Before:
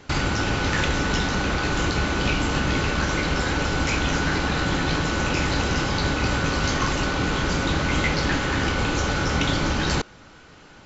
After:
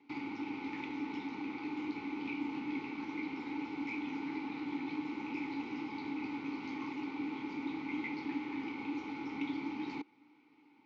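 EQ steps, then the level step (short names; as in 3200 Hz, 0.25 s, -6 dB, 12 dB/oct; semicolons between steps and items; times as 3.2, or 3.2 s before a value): vowel filter u; speaker cabinet 170–5500 Hz, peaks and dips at 180 Hz -9 dB, 340 Hz -6 dB, 720 Hz -7 dB, 1000 Hz -6 dB, 2900 Hz -5 dB; -1.0 dB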